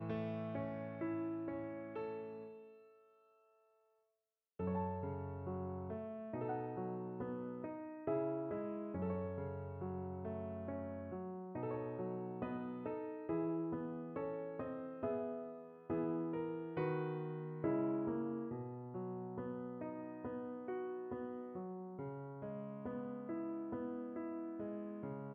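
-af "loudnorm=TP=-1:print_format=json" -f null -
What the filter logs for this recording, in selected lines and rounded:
"input_i" : "-43.8",
"input_tp" : "-25.4",
"input_lra" : "5.1",
"input_thresh" : "-53.9",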